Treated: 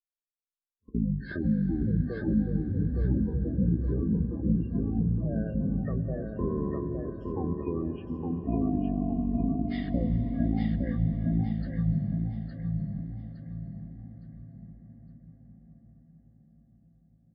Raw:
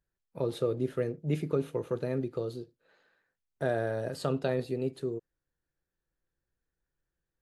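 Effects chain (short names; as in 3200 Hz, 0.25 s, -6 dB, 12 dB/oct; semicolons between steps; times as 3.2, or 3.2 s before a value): echoes that change speed 0.31 s, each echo +7 st, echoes 2, each echo -6 dB; gate -39 dBFS, range -30 dB; in parallel at -2.5 dB: limiter -24.5 dBFS, peak gain reduction 10 dB; on the sum: spectral gate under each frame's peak -20 dB strong; digital reverb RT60 4.7 s, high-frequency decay 0.8×, pre-delay 35 ms, DRR 10 dB; speed mistake 78 rpm record played at 33 rpm; on a send: feedback echo 0.863 s, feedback 34%, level -4 dB; on the sum: gain -1.5 dB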